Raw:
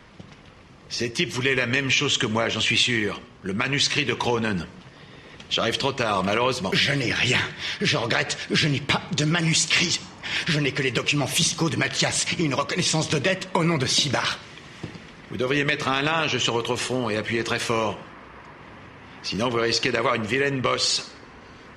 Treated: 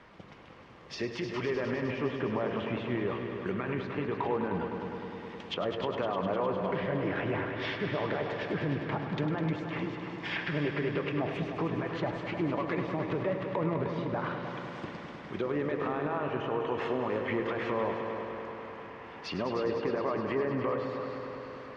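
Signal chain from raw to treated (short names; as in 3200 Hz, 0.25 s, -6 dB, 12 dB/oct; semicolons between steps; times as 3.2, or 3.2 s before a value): treble ducked by the level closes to 980 Hz, closed at -19.5 dBFS; LPF 1300 Hz 6 dB/oct; low shelf 290 Hz -11 dB; limiter -22.5 dBFS, peak gain reduction 10.5 dB; multi-head echo 0.102 s, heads all three, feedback 70%, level -12 dB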